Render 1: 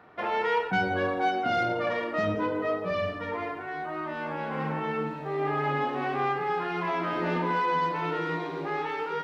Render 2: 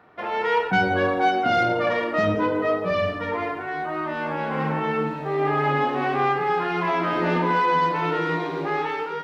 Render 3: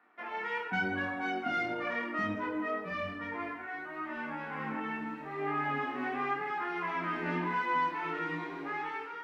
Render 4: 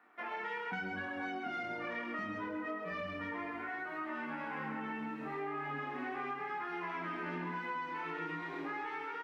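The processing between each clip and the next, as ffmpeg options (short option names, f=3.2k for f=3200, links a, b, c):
-af "dynaudnorm=f=130:g=7:m=6dB"
-filter_complex "[0:a]equalizer=f=125:t=o:w=1:g=-11,equalizer=f=250:t=o:w=1:g=7,equalizer=f=500:t=o:w=1:g=-9,equalizer=f=2k:t=o:w=1:g=5,equalizer=f=4k:t=o:w=1:g=-6,flanger=delay=20:depth=3.7:speed=0.9,acrossover=split=230|740[a][b][c];[a]aeval=exprs='sgn(val(0))*max(abs(val(0))-0.00112,0)':c=same[d];[d][b][c]amix=inputs=3:normalize=0,volume=-7.5dB"
-af "bandreject=f=50:t=h:w=6,bandreject=f=100:t=h:w=6,aecho=1:1:131:0.501,acompressor=threshold=-38dB:ratio=6,volume=1dB"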